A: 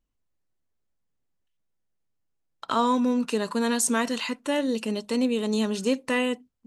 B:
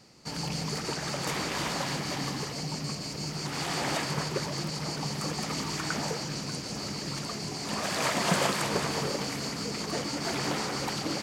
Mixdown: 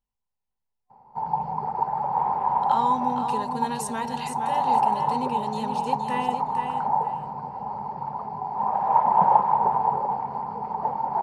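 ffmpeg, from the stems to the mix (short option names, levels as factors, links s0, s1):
-filter_complex "[0:a]volume=0.398,asplit=2[s0][s1];[s1]volume=0.447[s2];[1:a]lowpass=f=880:t=q:w=4.9,adelay=900,volume=0.562[s3];[s2]aecho=0:1:466|932|1398:1|0.2|0.04[s4];[s0][s3][s4]amix=inputs=3:normalize=0,superequalizer=6b=0.282:9b=3.55:15b=0.631"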